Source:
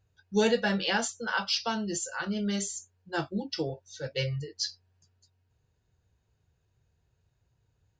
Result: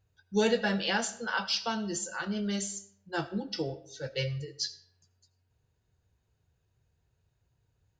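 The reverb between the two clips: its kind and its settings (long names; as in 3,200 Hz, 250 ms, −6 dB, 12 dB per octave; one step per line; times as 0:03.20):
comb and all-pass reverb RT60 0.7 s, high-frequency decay 0.7×, pre-delay 35 ms, DRR 15.5 dB
level −1.5 dB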